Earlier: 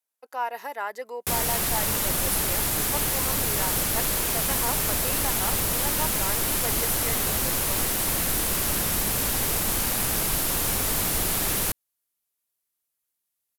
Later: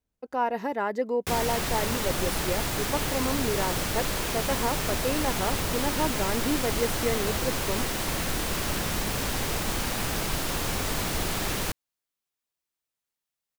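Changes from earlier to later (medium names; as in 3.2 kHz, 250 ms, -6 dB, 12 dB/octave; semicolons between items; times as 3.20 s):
speech: remove high-pass 770 Hz 12 dB/octave; master: add peaking EQ 12 kHz -13.5 dB 0.94 oct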